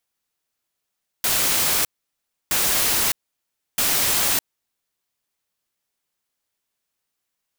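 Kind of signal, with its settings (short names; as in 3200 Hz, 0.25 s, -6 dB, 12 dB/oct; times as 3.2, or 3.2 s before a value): noise bursts white, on 0.61 s, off 0.66 s, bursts 3, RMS -20 dBFS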